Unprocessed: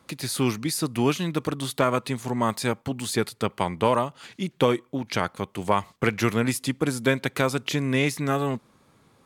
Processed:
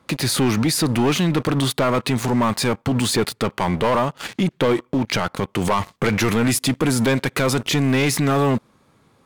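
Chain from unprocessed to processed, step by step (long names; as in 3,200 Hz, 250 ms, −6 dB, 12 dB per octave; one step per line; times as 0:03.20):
high-shelf EQ 4,700 Hz −8 dB, from 0:05.59 −3 dB
leveller curve on the samples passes 3
brickwall limiter −20.5 dBFS, peak gain reduction 13 dB
level +8 dB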